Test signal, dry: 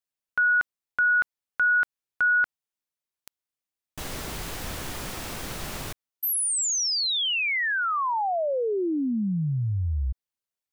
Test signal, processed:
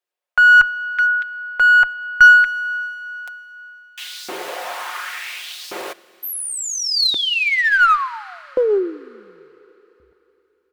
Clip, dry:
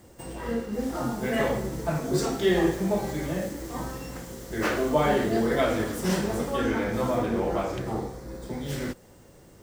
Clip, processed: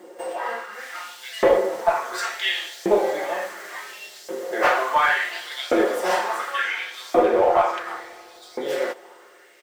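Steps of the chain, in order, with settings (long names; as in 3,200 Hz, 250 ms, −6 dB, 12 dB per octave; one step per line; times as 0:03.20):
bass and treble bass −12 dB, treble −9 dB
comb filter 5.6 ms, depth 42%
auto-filter high-pass saw up 0.7 Hz 330–4,900 Hz
in parallel at −4 dB: asymmetric clip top −22.5 dBFS
on the sum: four-comb reverb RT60 3.5 s, combs from 26 ms, DRR 19 dB
level +3 dB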